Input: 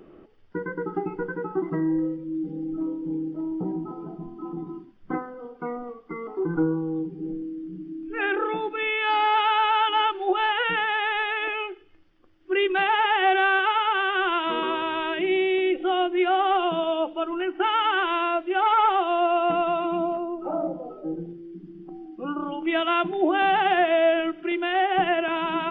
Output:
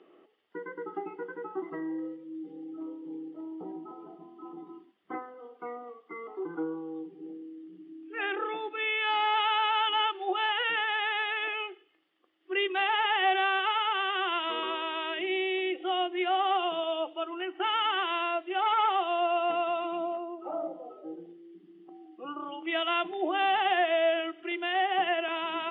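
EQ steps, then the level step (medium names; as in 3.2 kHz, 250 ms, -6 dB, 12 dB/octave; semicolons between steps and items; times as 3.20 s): cabinet simulation 380–3300 Hz, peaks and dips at 560 Hz -4 dB, 940 Hz -5 dB, 1.5 kHz -9 dB, 2.4 kHz -6 dB; tilt EQ +2.5 dB/octave; -1.5 dB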